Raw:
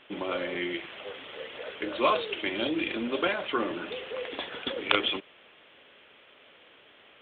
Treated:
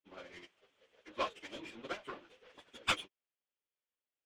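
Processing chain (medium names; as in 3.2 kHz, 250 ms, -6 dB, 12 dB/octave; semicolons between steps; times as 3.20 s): power-law waveshaper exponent 2; plain phase-vocoder stretch 0.59×; trim +5.5 dB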